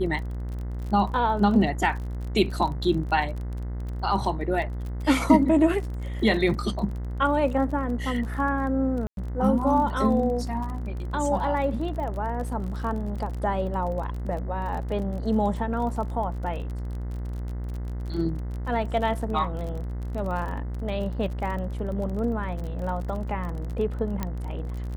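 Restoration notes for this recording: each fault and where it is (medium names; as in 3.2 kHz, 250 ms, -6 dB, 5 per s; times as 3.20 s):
buzz 60 Hz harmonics 35 -31 dBFS
crackle 34 per s -33 dBFS
9.07–9.17 s: dropout 102 ms
24.23 s: pop -14 dBFS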